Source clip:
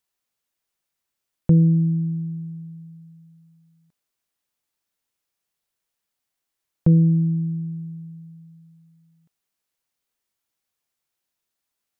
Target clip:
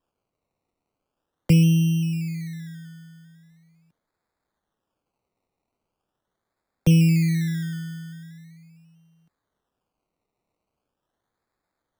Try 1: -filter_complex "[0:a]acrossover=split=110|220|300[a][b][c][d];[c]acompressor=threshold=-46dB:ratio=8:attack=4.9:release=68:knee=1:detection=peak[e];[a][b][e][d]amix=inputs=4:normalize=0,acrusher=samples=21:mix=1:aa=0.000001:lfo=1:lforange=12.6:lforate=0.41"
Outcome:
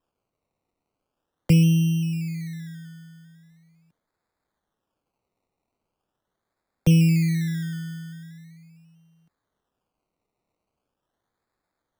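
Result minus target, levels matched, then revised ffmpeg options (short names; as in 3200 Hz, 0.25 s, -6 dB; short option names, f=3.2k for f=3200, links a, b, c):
compressor: peak gain reduction +9.5 dB
-filter_complex "[0:a]acrossover=split=110|220|300[a][b][c][d];[c]acompressor=threshold=-35dB:ratio=8:attack=4.9:release=68:knee=1:detection=peak[e];[a][b][e][d]amix=inputs=4:normalize=0,acrusher=samples=21:mix=1:aa=0.000001:lfo=1:lforange=12.6:lforate=0.41"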